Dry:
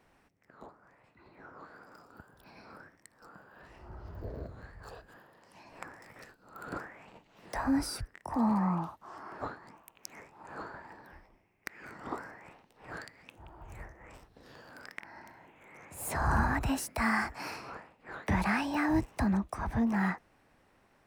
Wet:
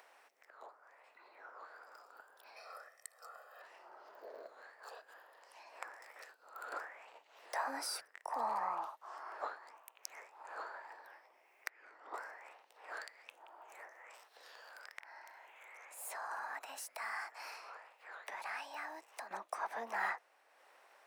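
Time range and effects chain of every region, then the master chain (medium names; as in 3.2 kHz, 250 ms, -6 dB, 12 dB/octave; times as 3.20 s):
2.56–3.62 s: peaking EQ 12 kHz +8 dB 1.6 oct + comb 1.6 ms, depth 78%
11.69–12.14 s: ladder high-pass 230 Hz, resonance 45% + distance through air 86 m
13.92–19.31 s: compression 1.5:1, threshold -51 dBFS + bass shelf 330 Hz -7.5 dB + tape noise reduction on one side only encoder only
whole clip: high-pass 520 Hz 24 dB/octave; upward compressor, threshold -55 dBFS; trim -1.5 dB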